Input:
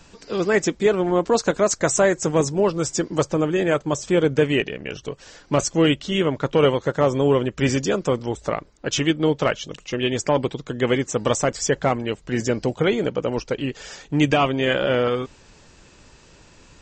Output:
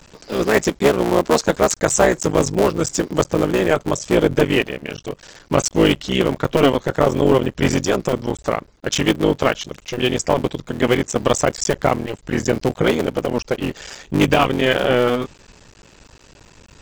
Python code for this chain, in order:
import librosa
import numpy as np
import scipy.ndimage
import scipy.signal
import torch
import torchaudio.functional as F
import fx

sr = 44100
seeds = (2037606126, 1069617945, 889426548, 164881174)

y = fx.cycle_switch(x, sr, every=3, mode='muted')
y = y * 10.0 ** (4.5 / 20.0)